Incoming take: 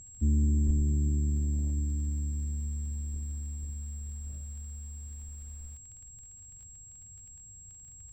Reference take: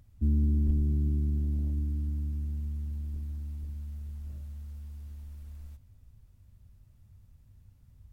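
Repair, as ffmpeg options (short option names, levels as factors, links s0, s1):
-af "adeclick=t=4,bandreject=f=7600:w=30"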